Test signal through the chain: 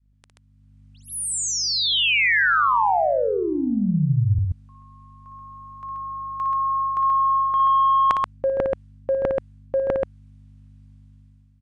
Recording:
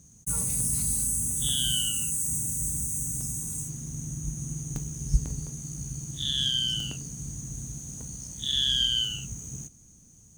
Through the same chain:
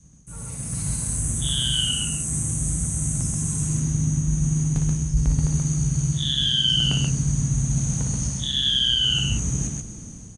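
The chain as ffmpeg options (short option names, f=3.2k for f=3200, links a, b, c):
-filter_complex "[0:a]asoftclip=type=tanh:threshold=-16dB,aresample=22050,aresample=44100,areverse,acompressor=threshold=-40dB:ratio=5,areverse,aeval=exprs='val(0)+0.000447*(sin(2*PI*50*n/s)+sin(2*PI*2*50*n/s)/2+sin(2*PI*3*50*n/s)/3+sin(2*PI*4*50*n/s)/4+sin(2*PI*5*50*n/s)/5)':c=same,asplit=2[a][b];[b]aecho=0:1:58.31|131.2:0.447|0.708[c];[a][c]amix=inputs=2:normalize=0,adynamicequalizer=threshold=0.002:dfrequency=340:dqfactor=1:tfrequency=340:tqfactor=1:attack=5:release=100:ratio=0.375:range=3:mode=cutabove:tftype=bell,dynaudnorm=f=280:g=5:m=14dB,bass=f=250:g=0,treble=f=4k:g=-8,volume=5.5dB"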